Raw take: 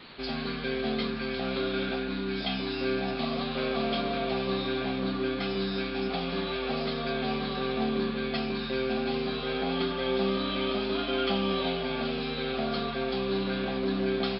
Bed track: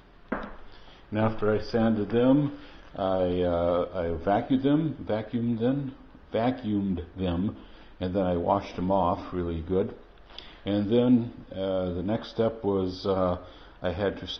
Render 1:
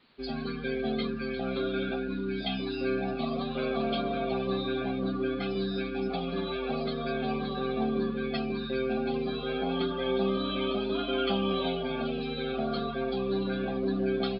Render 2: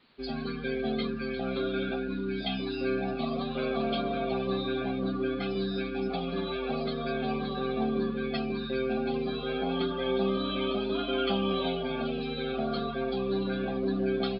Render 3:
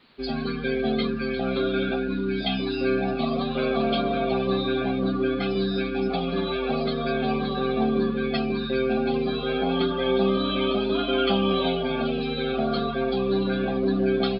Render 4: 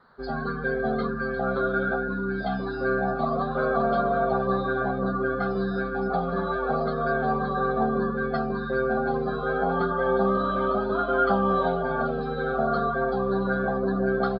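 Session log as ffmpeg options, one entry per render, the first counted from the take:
-af "afftdn=nr=16:nf=-34"
-af anull
-af "volume=6dB"
-af "firequalizer=gain_entry='entry(180,0);entry(290,-10);entry(450,2);entry(1500,8);entry(2500,-27);entry(4100,-11)':delay=0.05:min_phase=1"

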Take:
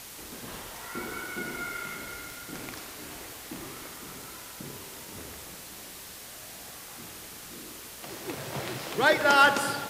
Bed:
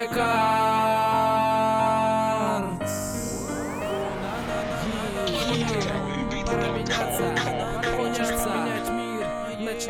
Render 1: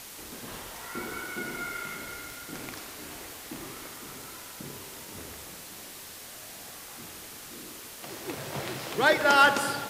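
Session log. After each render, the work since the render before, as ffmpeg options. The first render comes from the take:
-af "bandreject=f=60:t=h:w=4,bandreject=f=120:t=h:w=4,bandreject=f=180:t=h:w=4"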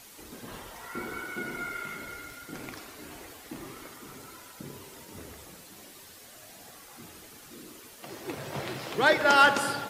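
-af "afftdn=nr=8:nf=-45"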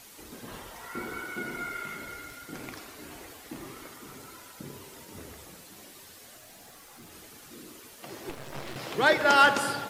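-filter_complex "[0:a]asettb=1/sr,asplit=3[a][b][c];[a]atrim=end=6.374[d];[b]atrim=start=6.37:end=7.12,asetpts=PTS-STARTPTS,afade=t=in:d=0.004:c=qsin,afade=t=out:st=0.746:d=0.004:c=qsin,aeval=exprs='(tanh(141*val(0)+0.2)-tanh(0.2))/141':c=same[e];[c]atrim=start=7.116[f];[d][e]acrossfade=d=0.004:c1=hsin:c2=qsin[g];[g][f]acrossfade=d=0.004:c1=qsin:c2=hsin,asettb=1/sr,asplit=3[h][i][j];[h]atrim=end=8.294[k];[i]atrim=start=8.29:end=8.76,asetpts=PTS-STARTPTS,afade=t=in:d=0.004:c=qsin,afade=t=out:st=0.466:d=0.004:c=qsin,aeval=exprs='max(val(0),0)':c=same[l];[j]atrim=start=8.756[m];[k][l]acrossfade=d=0.004:c1=hsin:c2=qsin[n];[n][m]acrossfade=d=0.004:c1=qsin:c2=hsin"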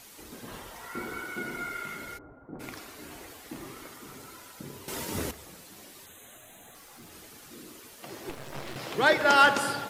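-filter_complex "[0:a]asplit=3[a][b][c];[a]afade=t=out:st=2.17:d=0.02[d];[b]lowpass=f=1k:w=0.5412,lowpass=f=1k:w=1.3066,afade=t=in:st=2.17:d=0.02,afade=t=out:st=2.59:d=0.02[e];[c]afade=t=in:st=2.59:d=0.02[f];[d][e][f]amix=inputs=3:normalize=0,asettb=1/sr,asplit=3[g][h][i];[g]atrim=end=6.064[j];[h]atrim=start=6.06:end=6.75,asetpts=PTS-STARTPTS,afade=t=in:d=0.004:c=qsin,afade=t=out:st=0.686:d=0.004:c=qsin,asuperstop=centerf=5000:order=20:qfactor=2.5[k];[i]atrim=start=6.746[l];[j][k]acrossfade=d=0.004:c1=hsin:c2=qsin[m];[m][l]acrossfade=d=0.004:c1=qsin:c2=hsin,asplit=3[n][o][p];[n]atrim=end=4.882[q];[o]atrim=start=4.878:end=5.312,asetpts=PTS-STARTPTS,volume=12dB[r];[p]atrim=start=5.308[s];[q][r]acrossfade=d=0.004:c1=hsin:c2=hsin[t];[t][s]acrossfade=d=0.004:c1=hsin:c2=hsin"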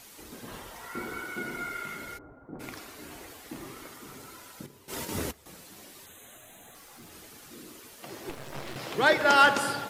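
-filter_complex "[0:a]asettb=1/sr,asplit=3[a][b][c];[a]atrim=end=4.664[d];[b]atrim=start=4.66:end=5.46,asetpts=PTS-STARTPTS,afade=t=in:d=0.004:c=qsin,afade=t=out:st=0.796:d=0.004:c=qsin,agate=range=-10dB:threshold=-38dB:ratio=16:release=100:detection=peak[e];[c]atrim=start=5.456[f];[d][e]acrossfade=d=0.004:c1=hsin:c2=qsin[g];[g][f]acrossfade=d=0.004:c1=qsin:c2=hsin"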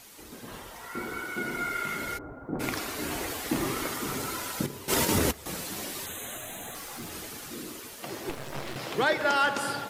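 -af "dynaudnorm=f=440:g=11:m=13.5dB,alimiter=limit=-14dB:level=0:latency=1:release=320"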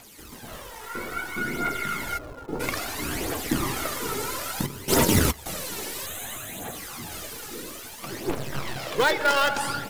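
-filter_complex "[0:a]asplit=2[a][b];[b]acrusher=bits=4:dc=4:mix=0:aa=0.000001,volume=-7dB[c];[a][c]amix=inputs=2:normalize=0,aphaser=in_gain=1:out_gain=1:delay=2.4:decay=0.52:speed=0.6:type=triangular"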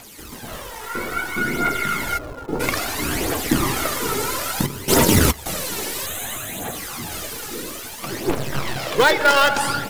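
-af "volume=6.5dB,alimiter=limit=-3dB:level=0:latency=1"

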